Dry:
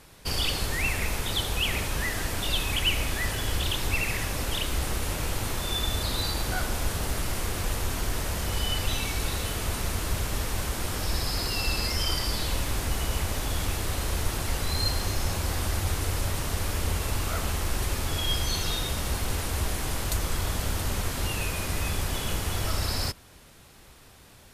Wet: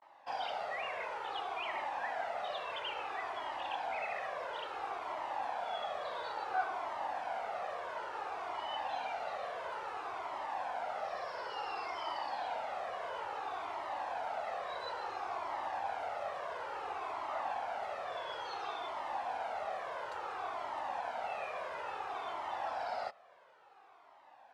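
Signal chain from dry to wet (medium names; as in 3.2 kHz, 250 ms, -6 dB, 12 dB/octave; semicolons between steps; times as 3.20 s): vibrato 0.46 Hz 90 cents; ladder band-pass 850 Hz, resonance 55%; Shepard-style flanger falling 0.58 Hz; trim +12 dB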